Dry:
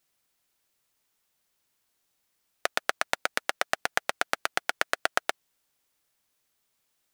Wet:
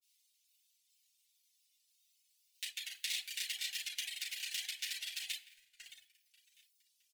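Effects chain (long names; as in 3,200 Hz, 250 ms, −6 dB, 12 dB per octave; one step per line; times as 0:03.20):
dynamic equaliser 5,400 Hz, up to −7 dB, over −54 dBFS, Q 1.6
repeating echo 653 ms, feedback 31%, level −16 dB
noise gate −48 dBFS, range −11 dB
granular cloud 100 ms, spray 33 ms, pitch spread up and down by 0 semitones
harmonic and percussive parts rebalanced percussive −13 dB
convolution reverb RT60 0.45 s, pre-delay 3 ms, DRR −8.5 dB
reverb reduction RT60 1.1 s
hard clipping −32 dBFS, distortion −7 dB
downward compressor, threshold −40 dBFS, peak gain reduction 6.5 dB
inverse Chebyshev high-pass filter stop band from 1,400 Hz, stop band 40 dB
level +13 dB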